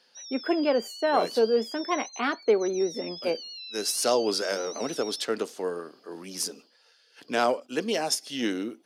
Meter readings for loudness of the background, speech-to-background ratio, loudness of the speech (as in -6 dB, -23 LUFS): -39.0 LUFS, 11.0 dB, -28.0 LUFS